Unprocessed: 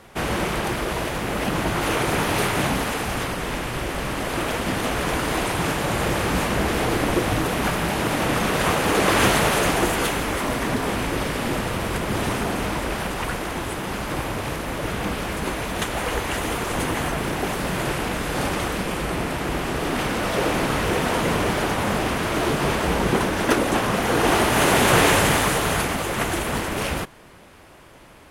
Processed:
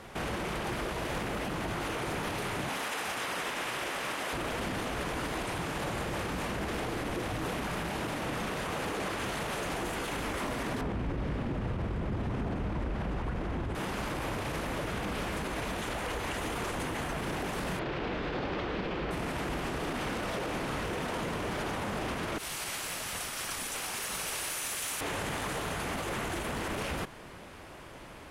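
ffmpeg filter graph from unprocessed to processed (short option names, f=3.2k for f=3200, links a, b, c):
-filter_complex "[0:a]asettb=1/sr,asplit=3[a][b][c];[a]atrim=end=2.694[d];[b]atrim=start=2.69:end=4.33,asetpts=PTS-STARTPTS,afade=t=in:d=0.004:c=qsin,afade=t=out:st=1.636:d=0.004:c=qsin,highpass=f=800:p=1,bandreject=f=4.4k:w=27[e];[c]atrim=start=4.326[f];[d][e]acrossfade=d=0.004:c1=hsin:c2=qsin[g];[g][f]acrossfade=d=0.004:c1=qsin:c2=hsin,asettb=1/sr,asplit=3[h][i][j];[h]atrim=end=10.814[k];[i]atrim=start=10.81:end=13.75,asetpts=PTS-STARTPTS,afade=t=in:d=0.004:c=qsin,afade=t=out:st=2.936:d=0.004:c=qsin,highpass=f=67:p=1,aemphasis=mode=reproduction:type=riaa[l];[j]atrim=start=13.746[m];[k][l]acrossfade=d=0.004:c1=hsin:c2=qsin[n];[n][m]acrossfade=d=0.004:c1=qsin:c2=hsin,asettb=1/sr,asplit=3[o][p][q];[o]atrim=end=17.794[r];[p]atrim=start=17.79:end=19.11,asetpts=PTS-STARTPTS,afade=t=in:d=0.004:c=qsin,afade=t=out:st=1.316:d=0.004:c=qsin,lowpass=f=4.5k:w=0.5412,lowpass=f=4.5k:w=1.3066,equalizer=f=390:w=1.5:g=5,aeval=exprs='sgn(val(0))*max(abs(val(0))-0.00211,0)':c=same[s];[q]atrim=start=19.106[t];[r][s]acrossfade=d=0.004:c1=hsin:c2=qsin[u];[u][t]acrossfade=d=0.004:c1=qsin:c2=hsin,asettb=1/sr,asplit=3[v][w][x];[v]atrim=end=22.384[y];[w]atrim=start=22.38:end=25.01,asetpts=PTS-STARTPTS,afade=t=in:d=0.004:c=qsin,afade=t=out:st=2.626:d=0.004:c=qsin,aderivative,afreqshift=-290[z];[x]atrim=start=25.006[aa];[y][z]acrossfade=d=0.004:c1=hsin:c2=qsin[ab];[ab][aa]acrossfade=d=0.004:c1=qsin:c2=hsin,highshelf=f=11k:g=-7,acompressor=threshold=-25dB:ratio=6,alimiter=level_in=2dB:limit=-24dB:level=0:latency=1:release=37,volume=-2dB"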